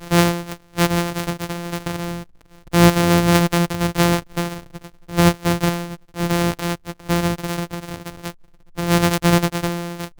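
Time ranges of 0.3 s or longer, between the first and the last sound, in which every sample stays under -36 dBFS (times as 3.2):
8.32–8.77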